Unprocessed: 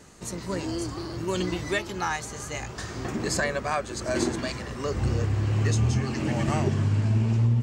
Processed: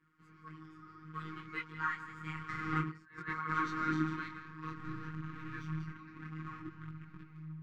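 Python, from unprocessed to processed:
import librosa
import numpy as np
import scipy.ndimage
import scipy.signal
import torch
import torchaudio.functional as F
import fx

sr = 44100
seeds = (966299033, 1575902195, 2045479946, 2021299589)

p1 = fx.doppler_pass(x, sr, speed_mps=36, closest_m=3.7, pass_at_s=3.06)
p2 = scipy.signal.sosfilt(scipy.signal.butter(2, 87.0, 'highpass', fs=sr, output='sos'), p1)
p3 = fx.peak_eq(p2, sr, hz=8900.0, db=-3.0, octaves=0.41)
p4 = fx.echo_thinned(p3, sr, ms=172, feedback_pct=28, hz=280.0, wet_db=-11.5)
p5 = fx.quant_dither(p4, sr, seeds[0], bits=8, dither='none')
p6 = p4 + (p5 * 10.0 ** (-7.0 / 20.0))
p7 = fx.robotise(p6, sr, hz=157.0)
p8 = fx.over_compress(p7, sr, threshold_db=-41.0, ratio=-0.5)
p9 = fx.curve_eq(p8, sr, hz=(350.0, 630.0, 1200.0, 10000.0), db=(0, -27, 10, -28))
p10 = fx.detune_double(p9, sr, cents=20)
y = p10 * 10.0 ** (8.5 / 20.0)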